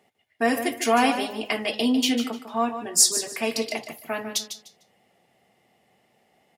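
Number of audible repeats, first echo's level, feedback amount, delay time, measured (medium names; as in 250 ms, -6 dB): 2, -10.0 dB, 22%, 150 ms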